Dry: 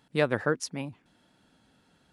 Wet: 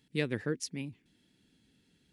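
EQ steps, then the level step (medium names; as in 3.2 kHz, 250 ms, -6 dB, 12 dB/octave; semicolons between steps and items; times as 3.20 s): high-order bell 900 Hz -14 dB; -3.0 dB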